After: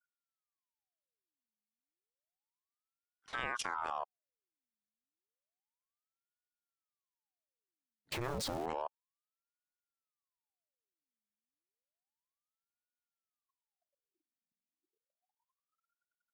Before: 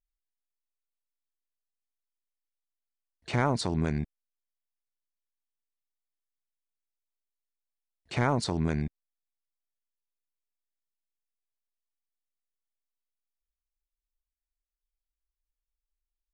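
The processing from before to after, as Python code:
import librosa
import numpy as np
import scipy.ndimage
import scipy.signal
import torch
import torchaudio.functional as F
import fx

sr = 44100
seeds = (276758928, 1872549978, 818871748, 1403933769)

y = fx.zero_step(x, sr, step_db=-28.5, at=(8.12, 8.66))
y = fx.level_steps(y, sr, step_db=17)
y = fx.ring_lfo(y, sr, carrier_hz=830.0, swing_pct=75, hz=0.31)
y = y * 10.0 ** (-1.0 / 20.0)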